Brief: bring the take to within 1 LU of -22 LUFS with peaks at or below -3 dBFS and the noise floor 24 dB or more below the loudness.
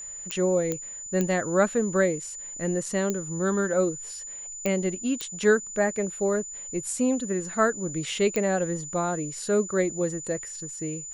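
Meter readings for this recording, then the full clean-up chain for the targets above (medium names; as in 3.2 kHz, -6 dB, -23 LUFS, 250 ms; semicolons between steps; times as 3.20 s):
clicks found 7; steady tone 7 kHz; tone level -36 dBFS; loudness -27.0 LUFS; peak level -9.5 dBFS; loudness target -22.0 LUFS
-> de-click; band-stop 7 kHz, Q 30; trim +5 dB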